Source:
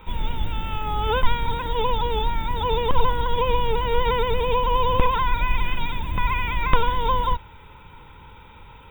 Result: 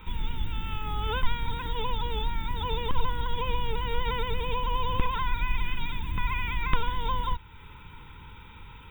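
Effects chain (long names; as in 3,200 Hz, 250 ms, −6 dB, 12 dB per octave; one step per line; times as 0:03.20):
parametric band 620 Hz −14 dB 0.8 octaves
in parallel at +2 dB: downward compressor, threshold −33 dBFS, peak gain reduction 21 dB
on the sum: level −7 dB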